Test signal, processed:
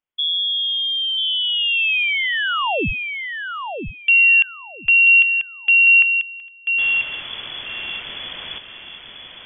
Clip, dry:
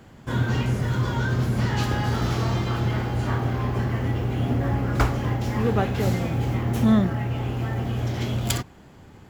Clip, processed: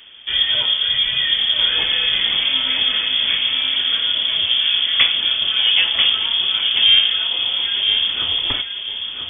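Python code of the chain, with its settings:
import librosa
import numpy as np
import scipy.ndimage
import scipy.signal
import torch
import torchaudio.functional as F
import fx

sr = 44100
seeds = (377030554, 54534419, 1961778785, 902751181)

p1 = fx.dynamic_eq(x, sr, hz=770.0, q=1.1, threshold_db=-29.0, ratio=4.0, max_db=3)
p2 = p1 + fx.echo_feedback(p1, sr, ms=989, feedback_pct=21, wet_db=-6.5, dry=0)
p3 = fx.freq_invert(p2, sr, carrier_hz=3400)
y = F.gain(torch.from_numpy(p3), 4.5).numpy()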